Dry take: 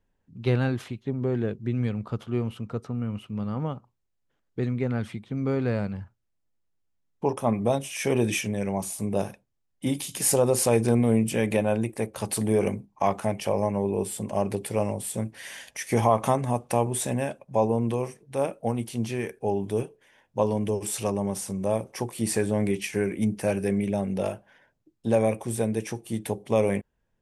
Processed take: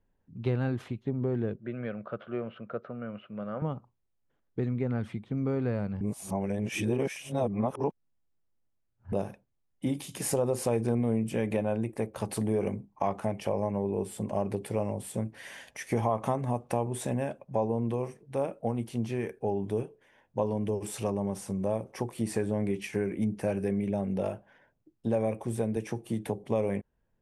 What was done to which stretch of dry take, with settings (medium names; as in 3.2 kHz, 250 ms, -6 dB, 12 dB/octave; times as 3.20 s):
1.56–3.62 s: cabinet simulation 260–3300 Hz, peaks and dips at 270 Hz -9 dB, 420 Hz -4 dB, 590 Hz +10 dB, 900 Hz -9 dB, 1.5 kHz +9 dB
6.01–9.12 s: reverse
25.76–26.44 s: three bands compressed up and down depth 40%
whole clip: treble shelf 2.4 kHz -10 dB; compression 2:1, threshold -28 dBFS